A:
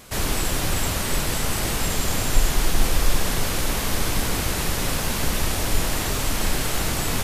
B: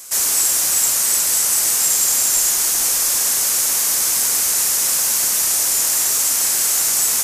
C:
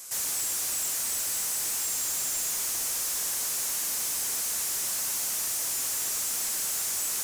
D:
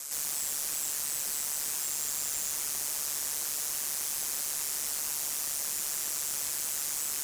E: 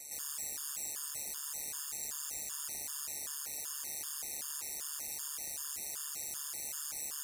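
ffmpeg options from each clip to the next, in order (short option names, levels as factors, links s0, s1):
-af "highpass=f=1500:p=1,highshelf=f=4800:t=q:w=1.5:g=10,volume=1.41"
-af "asoftclip=type=tanh:threshold=0.0841,volume=0.501"
-af "aeval=exprs='val(0)*sin(2*PI*73*n/s)':c=same,alimiter=level_in=3.16:limit=0.0631:level=0:latency=1,volume=0.316,volume=2"
-af "afftfilt=real='re*gt(sin(2*PI*2.6*pts/sr)*(1-2*mod(floor(b*sr/1024/910),2)),0)':imag='im*gt(sin(2*PI*2.6*pts/sr)*(1-2*mod(floor(b*sr/1024/910),2)),0)':win_size=1024:overlap=0.75,volume=0.562"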